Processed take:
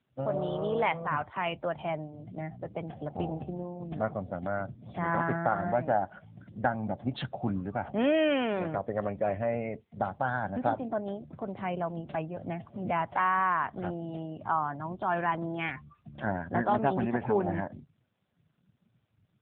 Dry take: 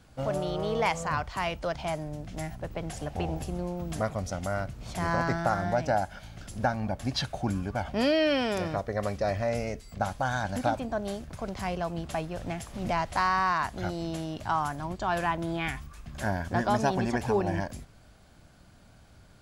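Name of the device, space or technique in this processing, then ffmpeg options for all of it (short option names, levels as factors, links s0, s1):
mobile call with aggressive noise cancelling: -af "highpass=110,afftdn=nr=18:nf=-43" -ar 8000 -c:a libopencore_amrnb -b:a 7950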